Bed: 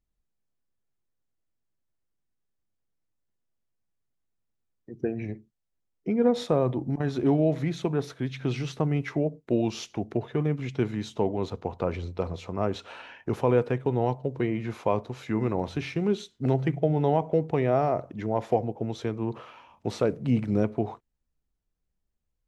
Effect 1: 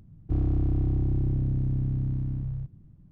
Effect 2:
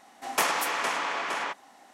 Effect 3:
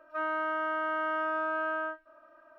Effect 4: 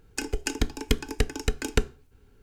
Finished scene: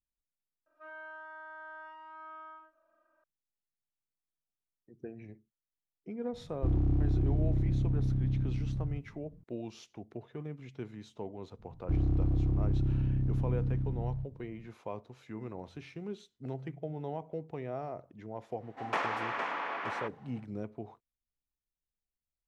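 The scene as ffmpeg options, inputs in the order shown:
-filter_complex "[1:a]asplit=2[a][b];[0:a]volume=-15dB[c];[3:a]aecho=1:1:46.65|93.29:0.891|0.631[d];[2:a]lowpass=2.2k[e];[d]atrim=end=2.58,asetpts=PTS-STARTPTS,volume=-18dB,afade=t=in:d=0.004:c=hsin,afade=t=out:st=2.576:d=0.004:c=hsin,adelay=660[f];[a]atrim=end=3.11,asetpts=PTS-STARTPTS,volume=-3dB,afade=t=in:d=0.004:c=hsin,afade=t=out:st=3.106:d=0.004:c=hsin,adelay=6330[g];[b]atrim=end=3.11,asetpts=PTS-STARTPTS,volume=-3.5dB,afade=t=in:d=0.004:c=hsin,afade=t=out:st=3.106:d=0.004:c=hsin,adelay=11590[h];[e]atrim=end=1.93,asetpts=PTS-STARTPTS,volume=-5dB,afade=t=in:d=0.1,afade=t=out:st=1.83:d=0.1,adelay=18550[i];[c][f][g][h][i]amix=inputs=5:normalize=0"

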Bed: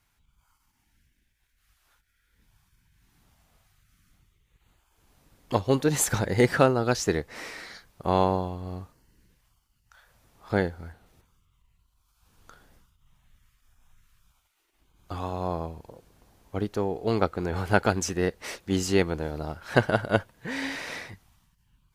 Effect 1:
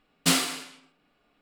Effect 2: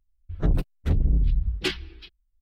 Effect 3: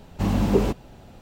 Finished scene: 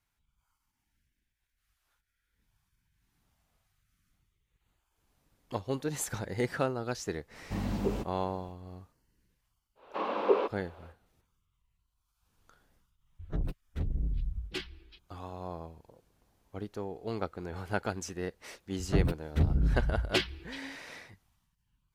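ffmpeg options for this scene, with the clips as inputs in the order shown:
-filter_complex "[3:a]asplit=2[a][b];[2:a]asplit=2[c][d];[0:a]volume=-10.5dB[e];[b]highpass=f=410:w=0.5412,highpass=f=410:w=1.3066,equalizer=f=510:t=q:w=4:g=4,equalizer=f=730:t=q:w=4:g=-4,equalizer=f=1.1k:t=q:w=4:g=7,equalizer=f=1.9k:t=q:w=4:g=-6,equalizer=f=3k:t=q:w=4:g=-3,lowpass=f=3.3k:w=0.5412,lowpass=f=3.3k:w=1.3066[f];[d]highpass=58[g];[a]atrim=end=1.21,asetpts=PTS-STARTPTS,volume=-11.5dB,afade=t=in:d=0.004:c=hsin,afade=t=out:st=1.206:d=0.004:c=hsin,adelay=7310[h];[f]atrim=end=1.21,asetpts=PTS-STARTPTS,volume=-1.5dB,afade=t=in:d=0.1,afade=t=out:st=1.11:d=0.1,adelay=9750[i];[c]atrim=end=2.41,asetpts=PTS-STARTPTS,volume=-11dB,afade=t=in:d=0.004:c=hsin,afade=t=out:st=2.406:d=0.004:c=hsin,adelay=12900[j];[g]atrim=end=2.41,asetpts=PTS-STARTPTS,volume=-2dB,afade=t=in:d=0.004:c=hsin,afade=t=out:st=2.406:d=0.004:c=hsin,adelay=18500[k];[e][h][i][j][k]amix=inputs=5:normalize=0"

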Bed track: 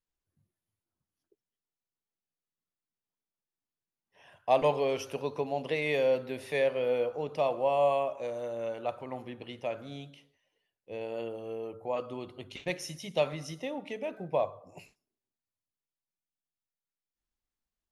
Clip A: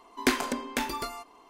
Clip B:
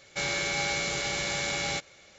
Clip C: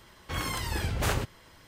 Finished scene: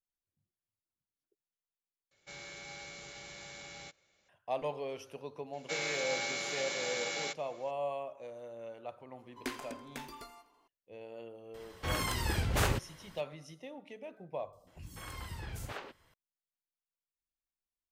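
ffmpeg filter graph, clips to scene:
-filter_complex "[2:a]asplit=2[a][b];[3:a]asplit=2[c][d];[0:a]volume=-10.5dB[e];[b]highpass=260[f];[1:a]aecho=1:1:83|166|249|332|415:0.126|0.073|0.0424|0.0246|0.0142[g];[d]acrossover=split=270|4900[h][i][j];[j]adelay=60[k];[i]adelay=200[l];[h][l][k]amix=inputs=3:normalize=0[m];[e]asplit=2[n][o];[n]atrim=end=2.114[p];[a]atrim=end=2.18,asetpts=PTS-STARTPTS,volume=-18dB[q];[o]atrim=start=4.286[r];[f]atrim=end=2.18,asetpts=PTS-STARTPTS,volume=-6.5dB,afade=t=in:d=0.004:c=hsin,afade=t=out:st=2.176:d=0.004:c=hsin,adelay=243873S[s];[g]atrim=end=1.49,asetpts=PTS-STARTPTS,volume=-15dB,afade=t=in:d=0.004:c=hsin,afade=t=out:st=1.486:d=0.004:c=hsin,adelay=9190[t];[c]atrim=end=1.67,asetpts=PTS-STARTPTS,volume=-1.5dB,afade=t=in:d=0.004:c=hsin,afade=t=out:st=1.666:d=0.004:c=hsin,adelay=508914S[u];[m]atrim=end=1.67,asetpts=PTS-STARTPTS,volume=-12.5dB,afade=t=in:d=0.004:c=hsin,afade=t=out:st=1.666:d=0.004:c=hsin,adelay=14470[v];[p][q]acrossfade=d=0.004:c1=hsin:c2=hsin[w];[w][r]acrossfade=d=0.004:c1=hsin:c2=hsin[x];[x][s][t][u][v]amix=inputs=5:normalize=0"

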